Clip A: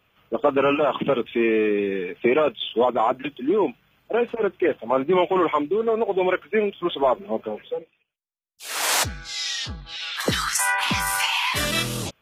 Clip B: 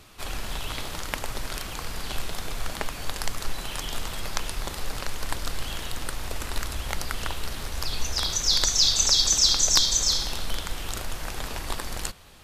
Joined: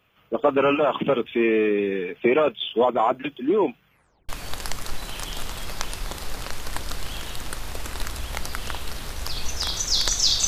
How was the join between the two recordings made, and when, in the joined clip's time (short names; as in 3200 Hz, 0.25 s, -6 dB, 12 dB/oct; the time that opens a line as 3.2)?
clip A
3.87 tape stop 0.42 s
4.29 switch to clip B from 2.85 s